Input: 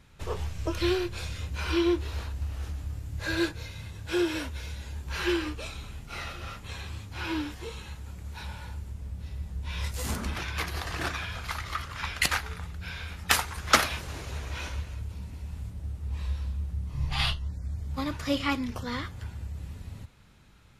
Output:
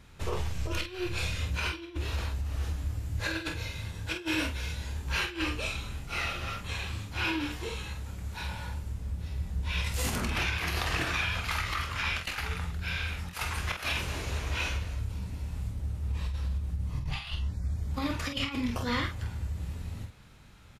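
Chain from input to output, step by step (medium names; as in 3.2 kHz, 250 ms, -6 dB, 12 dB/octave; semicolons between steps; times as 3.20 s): dynamic bell 2.6 kHz, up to +6 dB, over -50 dBFS, Q 2.6; compressor with a negative ratio -31 dBFS, ratio -0.5; early reflections 25 ms -9.5 dB, 47 ms -7 dB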